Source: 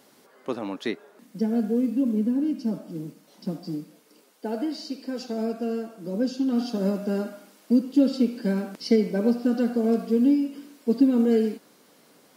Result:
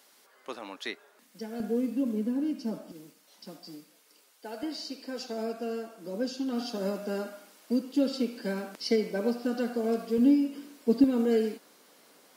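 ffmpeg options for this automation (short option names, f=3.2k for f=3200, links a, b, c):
-af "asetnsamples=n=441:p=0,asendcmd='1.6 highpass f 430;2.92 highpass f 1500;4.63 highpass f 580;10.18 highpass f 200;11.04 highpass f 450',highpass=f=1.4k:p=1"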